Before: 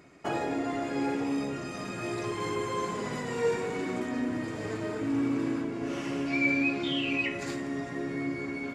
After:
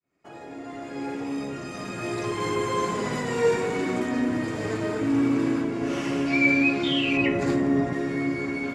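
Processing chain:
fade in at the beginning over 2.72 s
0:07.17–0:07.93: tilt shelving filter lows +6.5 dB, about 1,500 Hz
level +6 dB

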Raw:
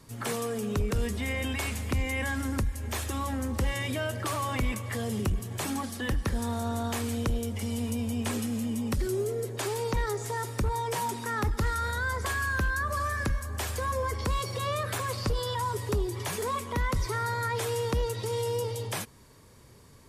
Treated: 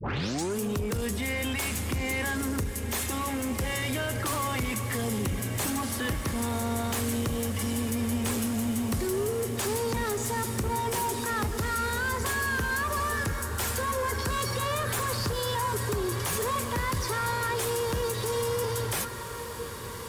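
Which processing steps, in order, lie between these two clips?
turntable start at the beginning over 0.59 s
high-pass filter 81 Hz
in parallel at −1 dB: brickwall limiter −28 dBFS, peak gain reduction 9.5 dB
on the sum: high-shelf EQ 8,000 Hz +8 dB
notch filter 650 Hz, Q 12
soft clipping −24.5 dBFS, distortion −15 dB
on a send: feedback delay with all-pass diffusion 1,799 ms, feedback 66%, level −10 dB

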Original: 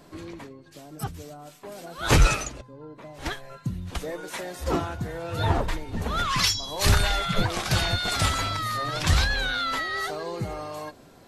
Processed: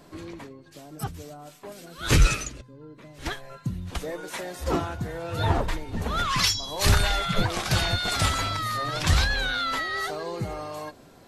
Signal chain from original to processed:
0:01.72–0:03.27: parametric band 790 Hz −11 dB 1.1 octaves

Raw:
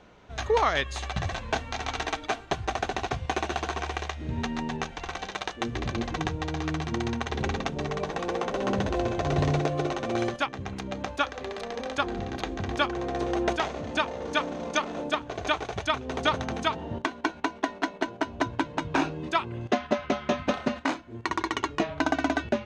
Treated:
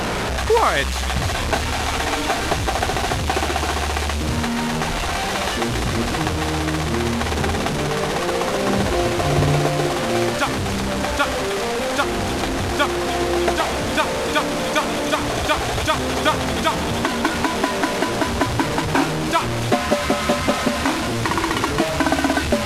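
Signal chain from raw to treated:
linear delta modulator 64 kbit/s, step −24 dBFS
high-shelf EQ 5,600 Hz −7.5 dB
in parallel at −5 dB: soft clipping −19 dBFS, distortion −16 dB
on the sum: delay with a high-pass on its return 308 ms, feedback 74%, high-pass 3,700 Hz, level −4 dB
level +4 dB

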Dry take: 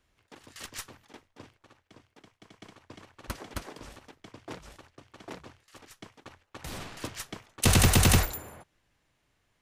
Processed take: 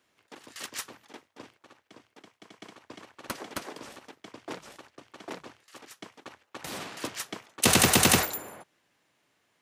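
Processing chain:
high-pass filter 210 Hz 12 dB per octave
level +3.5 dB

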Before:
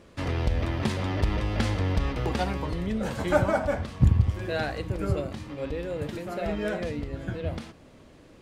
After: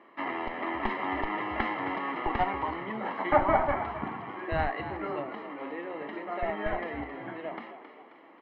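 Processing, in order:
high-pass filter 320 Hz 24 dB per octave
mains-hum notches 60/120/180/240/300/360/420/480/540 Hz
in parallel at −4 dB: comparator with hysteresis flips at −21.5 dBFS
on the sum: low-pass filter 2,300 Hz 24 dB per octave
comb filter 1 ms, depth 70%
on a send: echo with shifted repeats 267 ms, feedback 48%, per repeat +59 Hz, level −11 dB
on the sum: level +2 dB

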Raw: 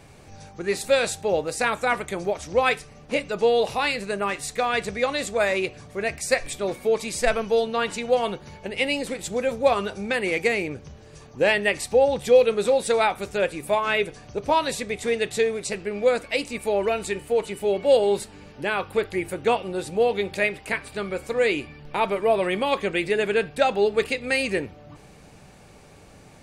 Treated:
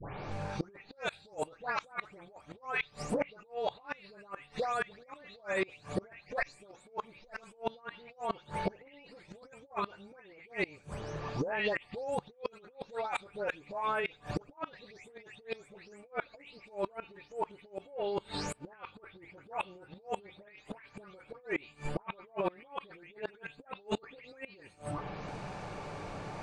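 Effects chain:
every frequency bin delayed by itself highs late, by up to 317 ms
parametric band 990 Hz +8 dB 1.1 octaves
compressor whose output falls as the input rises −29 dBFS, ratio −1
gate with flip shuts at −20 dBFS, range −27 dB
high-frequency loss of the air 95 metres

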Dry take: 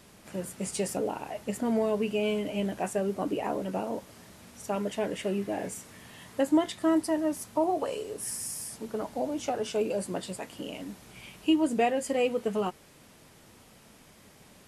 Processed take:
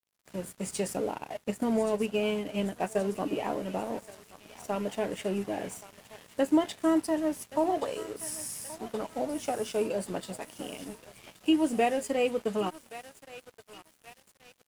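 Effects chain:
feedback echo with a high-pass in the loop 1,125 ms, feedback 72%, high-pass 780 Hz, level −11.5 dB
dead-zone distortion −47 dBFS
0:01.12–0:03.04: transient designer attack +2 dB, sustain −5 dB

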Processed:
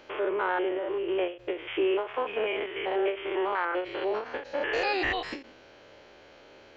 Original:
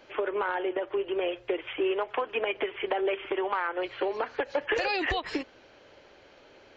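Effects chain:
spectrum averaged block by block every 100 ms
every ending faded ahead of time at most 160 dB per second
level +3.5 dB

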